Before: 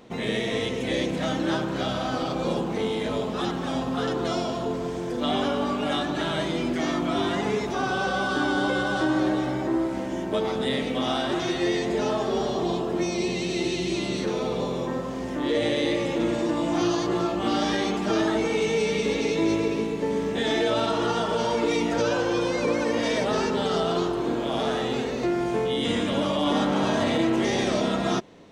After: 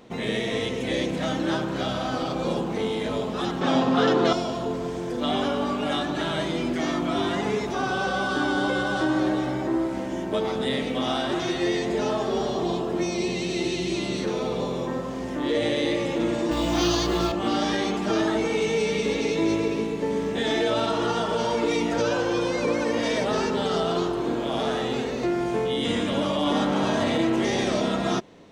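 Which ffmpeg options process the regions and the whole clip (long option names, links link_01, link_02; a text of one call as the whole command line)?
ffmpeg -i in.wav -filter_complex "[0:a]asettb=1/sr,asplit=3[link_01][link_02][link_03];[link_01]atrim=end=3.614[link_04];[link_02]atrim=start=3.61:end=4.33,asetpts=PTS-STARTPTS,afade=type=in:duration=0.004:curve=qsin,afade=type=out:start_time=0.716:duration=0.004:curve=qsin,acontrast=86,highpass=160,lowpass=5500[link_05];[link_03]atrim=start=4.326[link_06];[link_04][link_05]acrossfade=duration=0.004:curve1=hsin:curve2=qsin[link_07];[link_07][link_06]acrossfade=duration=0.004:curve1=qsin:curve2=hsin,asettb=1/sr,asplit=3[link_08][link_09][link_10];[link_08]atrim=end=16.514[link_11];[link_09]atrim=start=16.51:end=17.32,asetpts=PTS-STARTPTS,afade=type=in:duration=0.004:curve=qsin,afade=type=out:start_time=0.806:duration=0.004:curve=qsin,equalizer=frequency=4200:width=0.7:gain=8.5,acrusher=bits=7:mode=log:mix=0:aa=0.000001,aeval=exprs='val(0)+0.0251*(sin(2*PI*60*n/s)+sin(2*PI*2*60*n/s)/2+sin(2*PI*3*60*n/s)/3+sin(2*PI*4*60*n/s)/4+sin(2*PI*5*60*n/s)/5)':channel_layout=same[link_12];[link_10]atrim=start=17.316[link_13];[link_11][link_12]acrossfade=duration=0.004:curve1=hsin:curve2=qsin[link_14];[link_14][link_13]acrossfade=duration=0.004:curve1=qsin:curve2=hsin" out.wav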